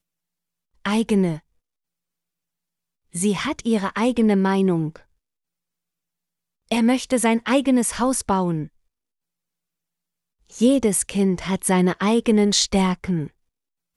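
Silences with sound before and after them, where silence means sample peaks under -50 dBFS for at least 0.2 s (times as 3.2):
1.4–3.13
5.03–6.69
8.68–10.47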